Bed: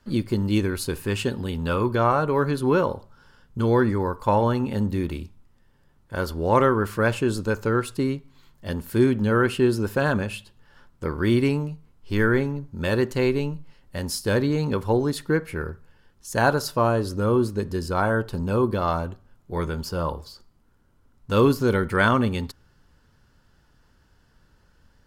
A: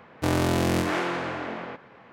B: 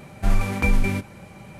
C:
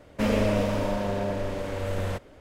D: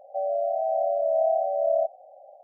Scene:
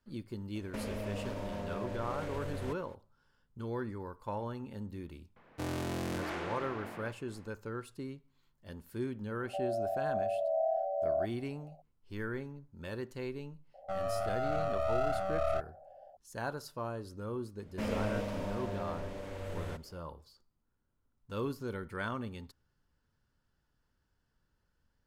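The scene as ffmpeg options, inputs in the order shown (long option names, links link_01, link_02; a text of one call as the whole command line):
ffmpeg -i bed.wav -i cue0.wav -i cue1.wav -i cue2.wav -i cue3.wav -filter_complex "[3:a]asplit=2[link_01][link_02];[4:a]asplit=2[link_03][link_04];[0:a]volume=-18dB[link_05];[link_01]acompressor=threshold=-29dB:ratio=6:attack=3.2:release=140:knee=1:detection=peak[link_06];[1:a]asoftclip=type=tanh:threshold=-13.5dB[link_07];[link_04]aeval=exprs='clip(val(0),-1,0.0178)':channel_layout=same[link_08];[link_06]atrim=end=2.4,asetpts=PTS-STARTPTS,volume=-6dB,afade=type=in:duration=0.004:curve=hsin,afade=type=out:start_time=2.396:duration=0.004:curve=hsin,adelay=550[link_09];[link_07]atrim=end=2.12,asetpts=PTS-STARTPTS,volume=-11.5dB,afade=type=in:duration=0.004:curve=hsin,afade=type=out:start_time=2.116:duration=0.004:curve=hsin,adelay=5360[link_10];[link_03]atrim=end=2.43,asetpts=PTS-STARTPTS,volume=-8.5dB,afade=type=in:duration=0.004:curve=hsin,afade=type=out:start_time=2.426:duration=0.004:curve=hsin,adelay=9390[link_11];[link_08]atrim=end=2.43,asetpts=PTS-STARTPTS,volume=-5.5dB,afade=type=in:duration=0.004:curve=hsin,afade=type=out:start_time=2.426:duration=0.004:curve=hsin,adelay=13740[link_12];[link_02]atrim=end=2.4,asetpts=PTS-STARTPTS,volume=-11dB,afade=type=in:duration=0.004:curve=hsin,afade=type=out:start_time=2.396:duration=0.004:curve=hsin,adelay=17590[link_13];[link_05][link_09][link_10][link_11][link_12][link_13]amix=inputs=6:normalize=0" out.wav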